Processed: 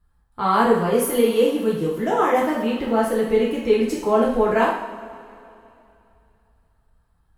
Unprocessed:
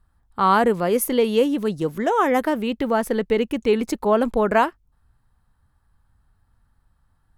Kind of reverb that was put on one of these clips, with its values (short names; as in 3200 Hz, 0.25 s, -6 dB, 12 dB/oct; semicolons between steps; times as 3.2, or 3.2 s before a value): two-slope reverb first 0.67 s, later 2.9 s, from -17 dB, DRR -6.5 dB; gain -7.5 dB